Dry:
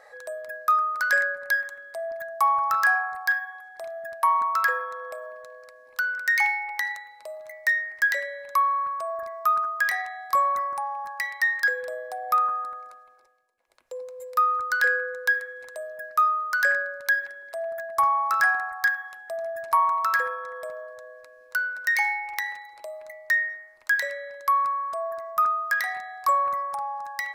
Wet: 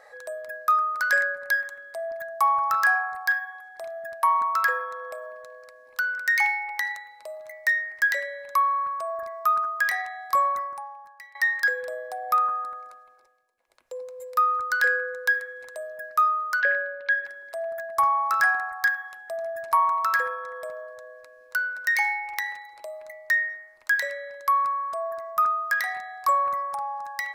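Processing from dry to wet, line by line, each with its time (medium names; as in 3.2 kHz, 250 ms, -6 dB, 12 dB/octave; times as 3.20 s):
10.45–11.35 s: fade out quadratic, to -17.5 dB
16.60–17.25 s: cabinet simulation 280–3600 Hz, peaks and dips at 480 Hz +8 dB, 840 Hz -9 dB, 1.2 kHz -6 dB, 2.9 kHz +5 dB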